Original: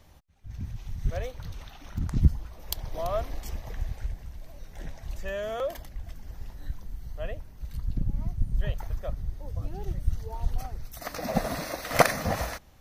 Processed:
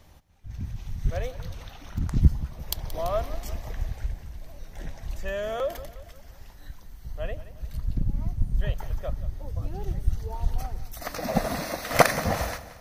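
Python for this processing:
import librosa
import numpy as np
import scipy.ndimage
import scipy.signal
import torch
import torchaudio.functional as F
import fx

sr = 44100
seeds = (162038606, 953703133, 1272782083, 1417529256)

y = fx.low_shelf(x, sr, hz=470.0, db=-9.0, at=(5.91, 7.05))
y = fx.echo_feedback(y, sr, ms=177, feedback_pct=46, wet_db=-15.5)
y = y * 10.0 ** (2.0 / 20.0)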